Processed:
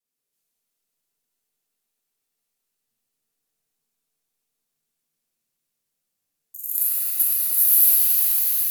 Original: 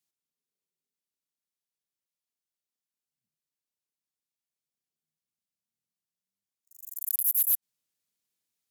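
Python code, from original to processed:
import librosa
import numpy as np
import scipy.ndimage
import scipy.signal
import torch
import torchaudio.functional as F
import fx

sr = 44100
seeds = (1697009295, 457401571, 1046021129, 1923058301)

y = fx.block_reorder(x, sr, ms=327.0, group=2)
y = fx.peak_eq(y, sr, hz=12000.0, db=5.5, octaves=0.97)
y = fx.echo_swell(y, sr, ms=122, loudest=5, wet_db=-13.0)
y = fx.rev_shimmer(y, sr, seeds[0], rt60_s=2.9, semitones=7, shimmer_db=-2, drr_db=-5.5)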